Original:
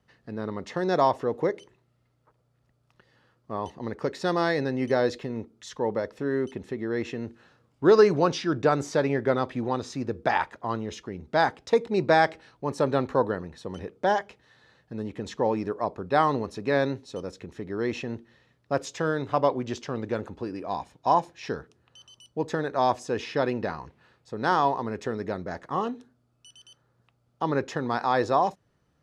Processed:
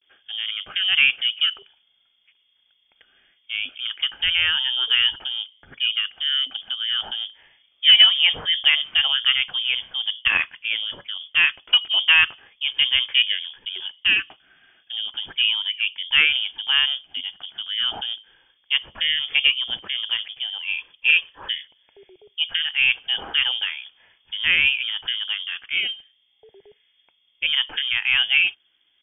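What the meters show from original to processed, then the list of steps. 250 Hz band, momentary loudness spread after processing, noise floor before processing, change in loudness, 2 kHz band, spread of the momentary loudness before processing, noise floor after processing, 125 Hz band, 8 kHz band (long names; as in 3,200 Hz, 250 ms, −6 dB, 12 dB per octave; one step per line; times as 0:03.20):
below −20 dB, 13 LU, −70 dBFS, +7.5 dB, +13.0 dB, 13 LU, −65 dBFS, below −15 dB, below −35 dB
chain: pitch vibrato 0.36 Hz 56 cents
harmonic generator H 2 −21 dB, 8 −45 dB, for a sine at −8 dBFS
voice inversion scrambler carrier 3,400 Hz
level +4 dB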